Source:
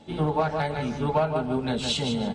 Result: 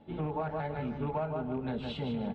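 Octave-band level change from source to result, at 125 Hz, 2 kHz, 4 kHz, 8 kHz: -7.0 dB, -11.0 dB, -17.0 dB, under -30 dB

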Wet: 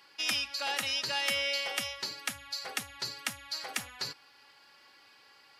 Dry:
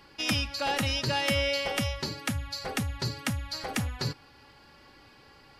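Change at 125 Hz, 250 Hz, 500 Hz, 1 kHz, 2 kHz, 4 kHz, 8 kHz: -22.5 dB, -16.0 dB, -9.5 dB, -5.5 dB, -1.5 dB, -0.5 dB, 0.0 dB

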